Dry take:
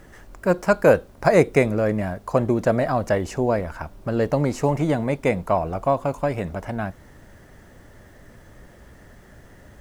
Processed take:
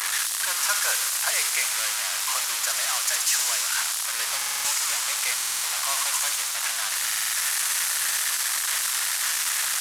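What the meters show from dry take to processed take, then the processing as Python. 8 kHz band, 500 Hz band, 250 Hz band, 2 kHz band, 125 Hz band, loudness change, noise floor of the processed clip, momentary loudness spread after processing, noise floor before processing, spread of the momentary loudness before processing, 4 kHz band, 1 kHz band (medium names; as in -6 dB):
+24.5 dB, -24.5 dB, under -35 dB, +4.0 dB, under -35 dB, -0.5 dB, -28 dBFS, 3 LU, -49 dBFS, 12 LU, +20.0 dB, -5.0 dB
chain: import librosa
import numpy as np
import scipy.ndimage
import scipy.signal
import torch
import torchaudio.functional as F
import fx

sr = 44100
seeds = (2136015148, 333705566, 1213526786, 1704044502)

p1 = fx.delta_mod(x, sr, bps=64000, step_db=-16.5)
p2 = scipy.signal.sosfilt(scipy.signal.butter(4, 1100.0, 'highpass', fs=sr, output='sos'), p1)
p3 = fx.high_shelf(p2, sr, hz=4900.0, db=9.5)
p4 = fx.echo_wet_highpass(p3, sr, ms=64, feedback_pct=84, hz=4300.0, wet_db=-3.5)
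p5 = 10.0 ** (-27.5 / 20.0) * np.tanh(p4 / 10.0 ** (-27.5 / 20.0))
p6 = p4 + (p5 * librosa.db_to_amplitude(-4.5))
p7 = fx.buffer_glitch(p6, sr, at_s=(4.37, 5.36, 7.06), block=2048, repeats=5)
y = p7 * librosa.db_to_amplitude(-5.0)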